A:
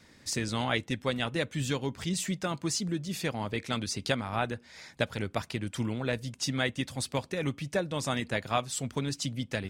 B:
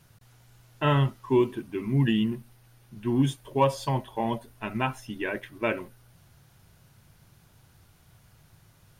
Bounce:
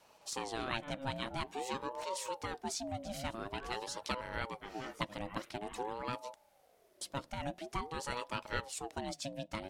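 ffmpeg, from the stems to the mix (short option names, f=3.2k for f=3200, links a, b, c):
-filter_complex "[0:a]volume=-5.5dB,asplit=3[a][b][c];[a]atrim=end=6.36,asetpts=PTS-STARTPTS,afade=t=out:st=6.356:d=0.004:c=hsin[d];[b]atrim=start=6.36:end=7.01,asetpts=PTS-STARTPTS,volume=0[e];[c]atrim=start=7.01,asetpts=PTS-STARTPTS,afade=t=in:d=0.004:c=hsin[f];[d][e][f]concat=n=3:v=0:a=1,asplit=2[g][h];[1:a]alimiter=limit=-23dB:level=0:latency=1:release=71,volume=-8dB[i];[h]apad=whole_len=396883[j];[i][j]sidechaincompress=threshold=-46dB:ratio=8:attack=10:release=113[k];[g][k]amix=inputs=2:normalize=0,aeval=exprs='val(0)*sin(2*PI*580*n/s+580*0.3/0.48*sin(2*PI*0.48*n/s))':c=same"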